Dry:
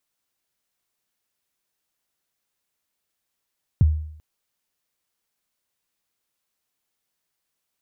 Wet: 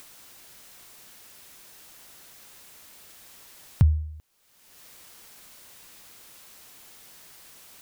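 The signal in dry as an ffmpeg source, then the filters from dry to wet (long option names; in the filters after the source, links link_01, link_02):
-f lavfi -i "aevalsrc='0.335*pow(10,-3*t/0.66)*sin(2*PI*(160*0.023/log(77/160)*(exp(log(77/160)*min(t,0.023)/0.023)-1)+77*max(t-0.023,0)))':duration=0.39:sample_rate=44100"
-af "acompressor=mode=upward:threshold=-26dB:ratio=2.5"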